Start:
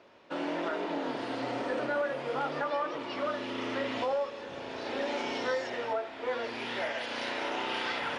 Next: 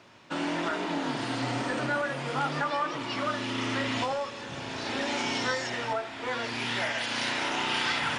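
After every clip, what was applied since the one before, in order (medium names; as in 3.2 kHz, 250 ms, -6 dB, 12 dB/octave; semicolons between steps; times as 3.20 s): graphic EQ 125/500/8000 Hz +8/-9/+10 dB; trim +5.5 dB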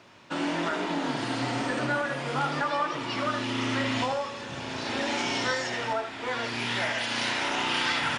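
delay 77 ms -10 dB; trim +1 dB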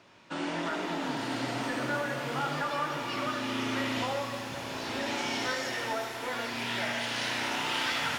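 pitch-shifted reverb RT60 4 s, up +12 st, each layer -8 dB, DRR 5 dB; trim -4.5 dB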